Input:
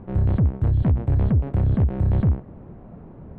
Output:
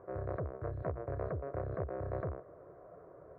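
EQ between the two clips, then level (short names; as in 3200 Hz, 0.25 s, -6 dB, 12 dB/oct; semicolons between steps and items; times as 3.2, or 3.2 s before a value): band-pass 800 Hz, Q 1.6; fixed phaser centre 850 Hz, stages 6; +3.0 dB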